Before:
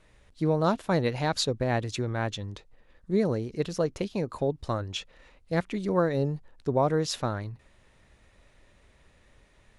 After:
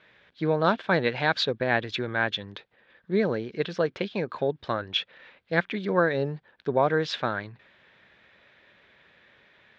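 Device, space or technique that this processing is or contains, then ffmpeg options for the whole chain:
kitchen radio: -af "highpass=180,equalizer=frequency=280:width_type=q:width=4:gain=-4,equalizer=frequency=1600:width_type=q:width=4:gain=10,equalizer=frequency=2300:width_type=q:width=4:gain=5,equalizer=frequency=3400:width_type=q:width=4:gain=7,lowpass=frequency=4400:width=0.5412,lowpass=frequency=4400:width=1.3066,volume=2dB"

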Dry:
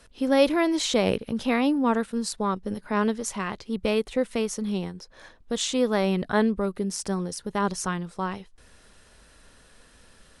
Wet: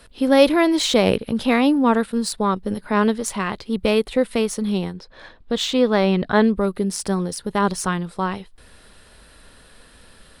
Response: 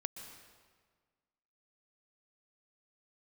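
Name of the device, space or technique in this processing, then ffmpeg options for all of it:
exciter from parts: -filter_complex "[0:a]asettb=1/sr,asplit=3[link_01][link_02][link_03];[link_01]atrim=end=4.934[link_04];[link_02]atrim=start=4.93:end=6.44,asetpts=PTS-STARTPTS,afade=type=in:duration=0.004:curve=qsin,afade=type=out:start_time=1.506:duration=0.004:curve=qsin,lowpass=5500[link_05];[link_03]atrim=start=6.436[link_06];[link_04][link_05]acrossfade=duration=0.004:curve1=hsin:curve2=qsin[link_07];[link_07][link_06]acrossfade=duration=0.004:curve1=qsin:curve2=hsin,asplit=2[link_08][link_09];[link_09]highpass=frequency=2800:width=0.5412,highpass=frequency=2800:width=1.3066,asoftclip=type=tanh:threshold=-31.5dB,highpass=frequency=4400:width=0.5412,highpass=frequency=4400:width=1.3066,volume=-4.5dB[link_10];[link_08][link_10]amix=inputs=2:normalize=0,volume=6dB"

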